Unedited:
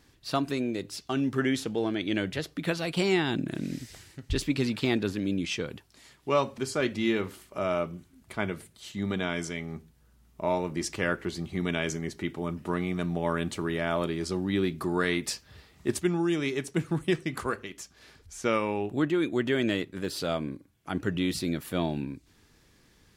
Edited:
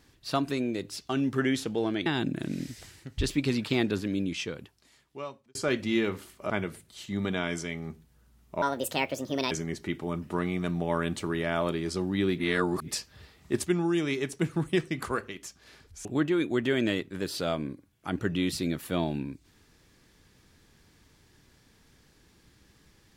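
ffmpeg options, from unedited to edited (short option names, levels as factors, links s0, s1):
-filter_complex "[0:a]asplit=9[s0][s1][s2][s3][s4][s5][s6][s7][s8];[s0]atrim=end=2.062[s9];[s1]atrim=start=3.178:end=6.67,asetpts=PTS-STARTPTS,afade=t=out:st=2.012:d=1.48[s10];[s2]atrim=start=6.67:end=7.622,asetpts=PTS-STARTPTS,afade=t=in:d=0.004:c=hsin[s11];[s3]atrim=start=8.358:end=10.484[s12];[s4]atrim=start=10.48:end=11.86,asetpts=PTS-STARTPTS,asetrate=68355,aresample=44100,atrim=end_sample=39263,asetpts=PTS-STARTPTS[s13];[s5]atrim=start=11.856:end=14.732[s14];[s6]atrim=start=14.728:end=15.232,asetpts=PTS-STARTPTS,areverse[s15];[s7]atrim=start=15.228:end=18.402[s16];[s8]atrim=start=18.868[s17];[s10][s11]concat=n=2:v=0:a=1[s18];[s9][s18]acrossfade=d=0.004:c1=hsin:c2=hsin[s19];[s19][s12]acrossfade=d=0.004:c1=hsin:c2=hsin[s20];[s20][s13]acrossfade=d=0.004:c1=hsin:c2=hsin[s21];[s21][s14]acrossfade=d=0.004:c1=hsin:c2=hsin[s22];[s22][s15]acrossfade=d=0.004:c1=hsin:c2=hsin[s23];[s23][s16]acrossfade=d=0.004:c1=hsin:c2=hsin[s24];[s24][s17]acrossfade=d=0.004:c1=hsin:c2=hsin"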